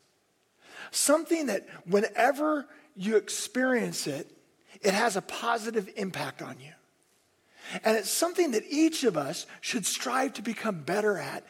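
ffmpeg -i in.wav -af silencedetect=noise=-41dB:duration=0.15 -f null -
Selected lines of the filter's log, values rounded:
silence_start: 0.00
silence_end: 0.72 | silence_duration: 0.72
silence_start: 2.63
silence_end: 2.98 | silence_duration: 0.35
silence_start: 4.23
silence_end: 4.76 | silence_duration: 0.53
silence_start: 6.70
silence_end: 7.64 | silence_duration: 0.94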